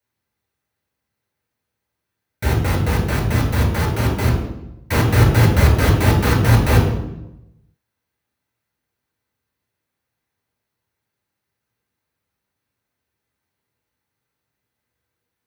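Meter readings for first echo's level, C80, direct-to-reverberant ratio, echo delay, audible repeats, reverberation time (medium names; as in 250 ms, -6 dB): no echo, 7.5 dB, -2.0 dB, no echo, no echo, 0.90 s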